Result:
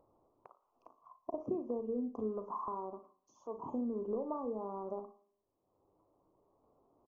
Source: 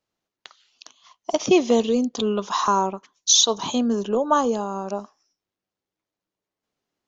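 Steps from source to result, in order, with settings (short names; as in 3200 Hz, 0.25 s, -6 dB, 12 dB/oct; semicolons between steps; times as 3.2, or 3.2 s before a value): bell 180 Hz -9.5 dB 0.55 oct; compressor 6:1, threshold -28 dBFS, peak gain reduction 14.5 dB; dynamic EQ 790 Hz, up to -6 dB, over -44 dBFS, Q 0.86; elliptic low-pass 1100 Hz, stop band 40 dB; doubler 37 ms -11 dB; on a send: flutter echo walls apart 10.2 m, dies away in 0.25 s; on the sum: Schroeder reverb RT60 0.57 s, combs from 33 ms, DRR 16 dB; upward compressor, threshold -51 dBFS; gain -4 dB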